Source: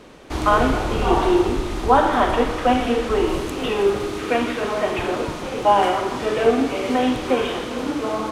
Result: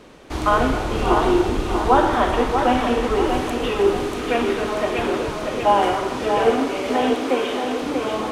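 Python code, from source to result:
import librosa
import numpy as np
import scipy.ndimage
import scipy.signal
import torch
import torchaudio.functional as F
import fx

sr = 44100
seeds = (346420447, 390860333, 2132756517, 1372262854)

p1 = fx.highpass(x, sr, hz=230.0, slope=24, at=(6.51, 7.82))
p2 = p1 + fx.echo_feedback(p1, sr, ms=638, feedback_pct=45, wet_db=-6.0, dry=0)
y = p2 * 10.0 ** (-1.0 / 20.0)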